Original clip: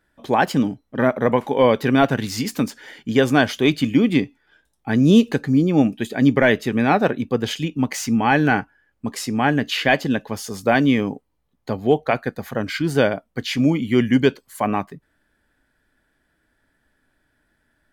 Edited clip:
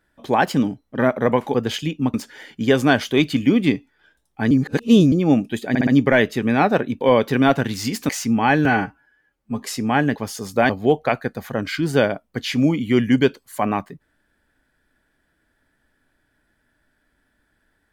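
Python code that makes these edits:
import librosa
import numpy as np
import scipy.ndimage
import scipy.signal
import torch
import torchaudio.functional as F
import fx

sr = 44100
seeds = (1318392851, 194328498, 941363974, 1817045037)

y = fx.edit(x, sr, fx.swap(start_s=1.54, length_s=1.08, other_s=7.31, other_length_s=0.6),
    fx.reverse_span(start_s=4.99, length_s=0.61),
    fx.stutter(start_s=6.17, slice_s=0.06, count=4),
    fx.stretch_span(start_s=8.47, length_s=0.65, factor=1.5),
    fx.cut(start_s=9.65, length_s=0.6),
    fx.cut(start_s=10.79, length_s=0.92), tone=tone)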